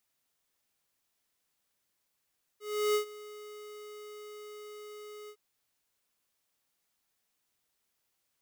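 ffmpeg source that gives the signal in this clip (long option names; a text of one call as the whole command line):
ffmpeg -f lavfi -i "aevalsrc='0.0473*(2*lt(mod(420*t,1),0.5)-1)':duration=2.759:sample_rate=44100,afade=type=in:duration=0.347,afade=type=out:start_time=0.347:duration=0.101:silence=0.1,afade=type=out:start_time=2.69:duration=0.069" out.wav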